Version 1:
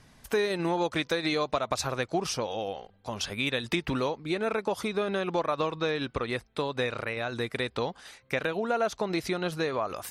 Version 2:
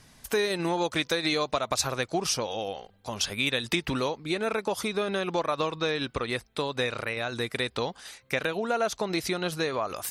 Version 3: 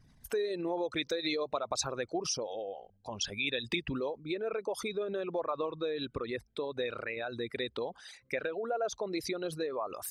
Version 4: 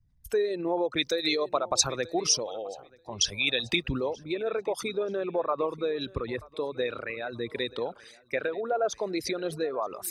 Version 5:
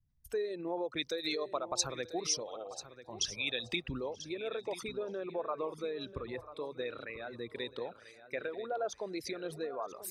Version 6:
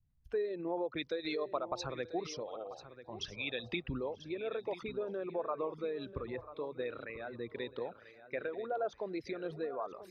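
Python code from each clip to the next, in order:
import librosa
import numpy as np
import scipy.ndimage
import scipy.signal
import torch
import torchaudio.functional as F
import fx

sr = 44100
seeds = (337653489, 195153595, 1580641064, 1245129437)

y1 = fx.high_shelf(x, sr, hz=3600.0, db=8.0)
y2 = fx.envelope_sharpen(y1, sr, power=2.0)
y2 = y2 * librosa.db_to_amplitude(-6.0)
y3 = fx.echo_feedback(y2, sr, ms=934, feedback_pct=36, wet_db=-18.0)
y3 = fx.band_widen(y3, sr, depth_pct=70)
y3 = y3 * librosa.db_to_amplitude(5.0)
y4 = fx.wow_flutter(y3, sr, seeds[0], rate_hz=2.1, depth_cents=17.0)
y4 = fx.hum_notches(y4, sr, base_hz=50, count=2)
y4 = y4 + 10.0 ** (-13.5 / 20.0) * np.pad(y4, (int(990 * sr / 1000.0), 0))[:len(y4)]
y4 = y4 * librosa.db_to_amplitude(-8.5)
y5 = fx.air_absorb(y4, sr, metres=290.0)
y5 = y5 * librosa.db_to_amplitude(1.0)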